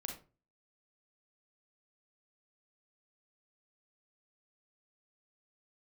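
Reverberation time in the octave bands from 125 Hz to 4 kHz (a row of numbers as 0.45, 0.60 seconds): 0.50, 0.40, 0.35, 0.30, 0.25, 0.20 seconds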